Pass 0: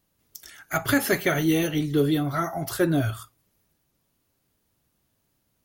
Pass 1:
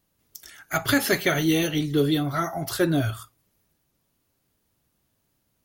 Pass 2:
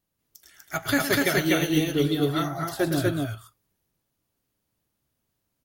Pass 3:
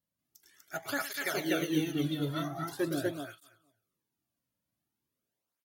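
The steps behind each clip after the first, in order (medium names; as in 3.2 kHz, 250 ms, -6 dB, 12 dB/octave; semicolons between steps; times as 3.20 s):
dynamic bell 4.1 kHz, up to +6 dB, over -43 dBFS, Q 1.1
loudspeakers at several distances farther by 38 m -9 dB, 84 m -1 dB; upward expansion 1.5:1, over -30 dBFS; trim -1.5 dB
feedback delay 228 ms, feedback 15%, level -17.5 dB; cancelling through-zero flanger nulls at 0.44 Hz, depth 2.7 ms; trim -6 dB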